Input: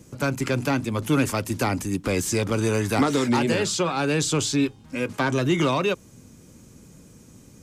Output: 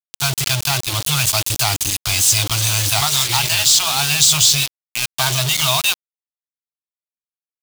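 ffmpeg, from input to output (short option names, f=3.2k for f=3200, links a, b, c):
-af "afftfilt=real='re*(1-between(b*sr/4096,160,620))':imag='im*(1-between(b*sr/4096,160,620))':win_size=4096:overlap=0.75,acrusher=bits=4:mix=0:aa=0.000001,highshelf=f=2.5k:t=q:w=1.5:g=9,volume=4.5dB"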